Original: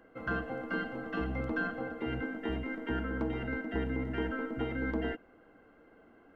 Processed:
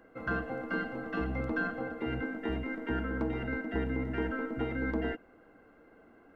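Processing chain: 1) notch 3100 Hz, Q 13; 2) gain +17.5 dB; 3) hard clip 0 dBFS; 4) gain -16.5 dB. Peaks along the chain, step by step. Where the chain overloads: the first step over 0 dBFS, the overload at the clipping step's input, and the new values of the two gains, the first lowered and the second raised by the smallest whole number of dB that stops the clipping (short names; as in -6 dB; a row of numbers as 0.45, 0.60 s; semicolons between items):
-21.5, -4.0, -4.0, -20.5 dBFS; no overload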